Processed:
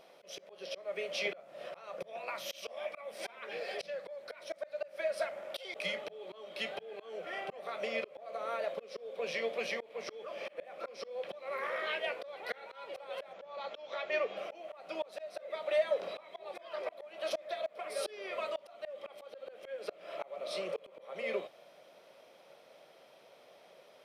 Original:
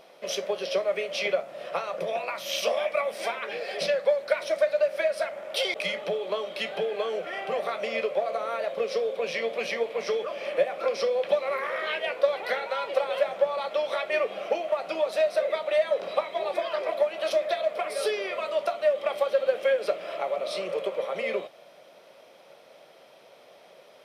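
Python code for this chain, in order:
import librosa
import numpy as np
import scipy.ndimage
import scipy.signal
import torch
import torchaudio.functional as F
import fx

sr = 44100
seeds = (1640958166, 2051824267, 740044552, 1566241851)

y = fx.auto_swell(x, sr, attack_ms=317.0)
y = fx.ellip_lowpass(y, sr, hz=7100.0, order=4, stop_db=40, at=(13.33, 14.37))
y = y * 10.0 ** (-6.0 / 20.0)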